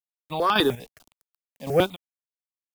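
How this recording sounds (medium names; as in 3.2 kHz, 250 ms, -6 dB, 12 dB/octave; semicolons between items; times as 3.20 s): a quantiser's noise floor 8-bit, dither none; chopped level 1.8 Hz, depth 60%, duty 35%; notches that jump at a steady rate 10 Hz 380–2000 Hz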